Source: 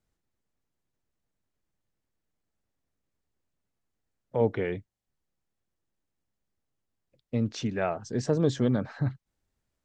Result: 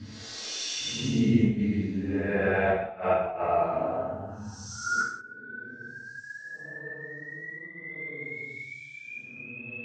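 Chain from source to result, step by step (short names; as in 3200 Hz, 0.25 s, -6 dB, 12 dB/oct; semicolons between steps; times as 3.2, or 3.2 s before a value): painted sound rise, 8.09–9.18, 1400–4700 Hz -19 dBFS; Paulstretch 8.5×, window 0.10 s, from 7.5; flipped gate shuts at -16 dBFS, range -27 dB; non-linear reverb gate 0.22 s falling, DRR -4.5 dB; gain -1 dB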